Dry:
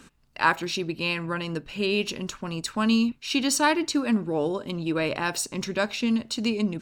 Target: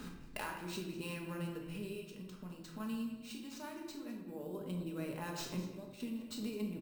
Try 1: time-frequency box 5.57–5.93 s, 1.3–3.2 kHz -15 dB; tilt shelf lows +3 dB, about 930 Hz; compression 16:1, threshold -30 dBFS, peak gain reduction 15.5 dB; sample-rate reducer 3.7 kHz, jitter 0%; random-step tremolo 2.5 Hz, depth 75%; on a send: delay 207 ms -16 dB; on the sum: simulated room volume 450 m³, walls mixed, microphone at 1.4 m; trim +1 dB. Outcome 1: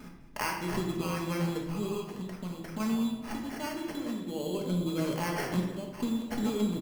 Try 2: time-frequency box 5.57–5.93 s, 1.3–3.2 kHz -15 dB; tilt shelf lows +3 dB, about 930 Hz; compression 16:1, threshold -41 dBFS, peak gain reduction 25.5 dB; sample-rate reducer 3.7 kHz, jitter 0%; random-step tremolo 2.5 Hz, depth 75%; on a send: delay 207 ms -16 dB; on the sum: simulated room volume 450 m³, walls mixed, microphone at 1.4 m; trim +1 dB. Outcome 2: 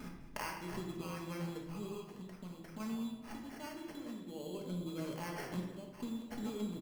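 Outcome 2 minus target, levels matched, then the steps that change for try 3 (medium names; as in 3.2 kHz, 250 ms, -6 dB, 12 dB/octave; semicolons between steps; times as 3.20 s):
sample-rate reducer: distortion +4 dB
change: sample-rate reducer 12 kHz, jitter 0%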